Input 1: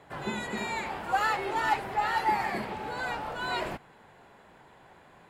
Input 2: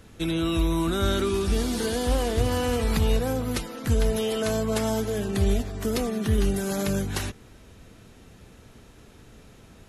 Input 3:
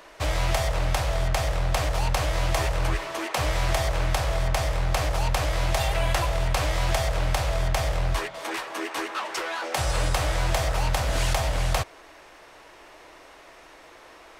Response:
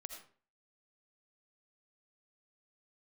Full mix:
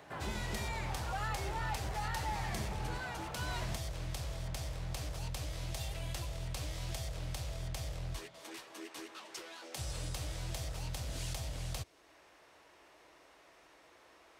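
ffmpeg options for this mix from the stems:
-filter_complex "[0:a]asubboost=boost=8.5:cutoff=130,volume=-2dB[link_01];[2:a]acrossover=split=390|3000[link_02][link_03][link_04];[link_03]acompressor=threshold=-50dB:ratio=2[link_05];[link_02][link_05][link_04]amix=inputs=3:normalize=0,volume=-11.5dB[link_06];[link_01]asoftclip=type=tanh:threshold=-24.5dB,alimiter=level_in=9.5dB:limit=-24dB:level=0:latency=1:release=476,volume=-9.5dB,volume=0dB[link_07];[link_06][link_07]amix=inputs=2:normalize=0,highpass=56"

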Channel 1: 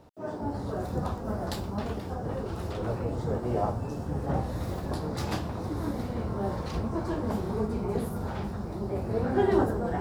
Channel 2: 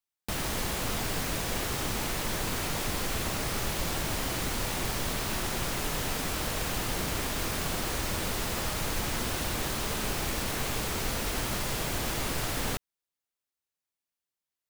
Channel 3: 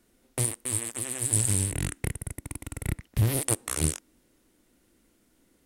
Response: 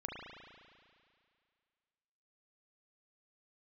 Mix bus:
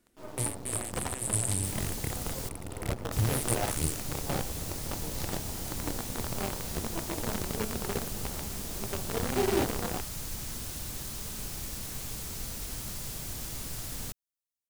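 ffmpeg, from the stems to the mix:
-filter_complex "[0:a]equalizer=frequency=1600:width_type=o:width=0.28:gain=-12,bandreject=frequency=1100:width=8.7,acrusher=bits=5:dc=4:mix=0:aa=0.000001,volume=-4.5dB[link_01];[1:a]bass=frequency=250:gain=9,treble=frequency=4000:gain=12,adelay=1350,volume=-14.5dB,asplit=3[link_02][link_03][link_04];[link_02]atrim=end=2.49,asetpts=PTS-STARTPTS,afade=type=out:start_time=2.486:duration=0.004:curve=hsin[link_05];[link_03]atrim=start=2.49:end=3.12,asetpts=PTS-STARTPTS,volume=0[link_06];[link_04]atrim=start=3.12,asetpts=PTS-STARTPTS,afade=type=in:duration=0.004:curve=hsin[link_07];[link_05][link_06][link_07]concat=n=3:v=0:a=1[link_08];[2:a]volume=-5dB[link_09];[link_01][link_08][link_09]amix=inputs=3:normalize=0"

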